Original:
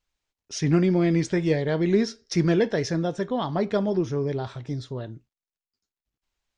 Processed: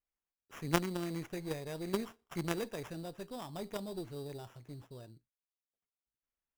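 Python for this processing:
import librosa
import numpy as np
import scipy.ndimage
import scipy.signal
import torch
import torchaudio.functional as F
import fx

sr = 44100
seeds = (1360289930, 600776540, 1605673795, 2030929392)

y = fx.cheby_harmonics(x, sr, harmonics=(3, 5, 6), levels_db=(-7, -19, -35), full_scale_db=-8.5)
y = fx.sample_hold(y, sr, seeds[0], rate_hz=4300.0, jitter_pct=0)
y = y * librosa.db_to_amplitude(-3.5)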